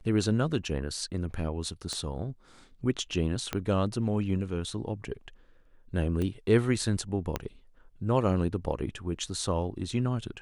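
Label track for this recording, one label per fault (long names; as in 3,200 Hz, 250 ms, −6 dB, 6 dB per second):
1.930000	1.930000	click −22 dBFS
3.530000	3.530000	click −14 dBFS
6.220000	6.220000	click −20 dBFS
7.360000	7.360000	click −14 dBFS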